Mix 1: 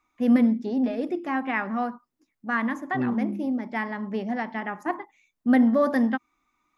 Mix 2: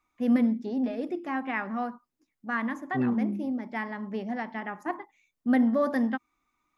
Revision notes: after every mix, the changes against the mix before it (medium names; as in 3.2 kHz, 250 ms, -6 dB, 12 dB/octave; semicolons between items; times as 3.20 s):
first voice -4.0 dB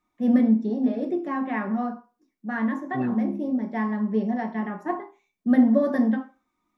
first voice -8.5 dB; reverb: on, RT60 0.35 s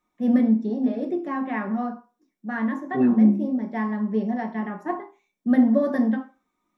second voice: send on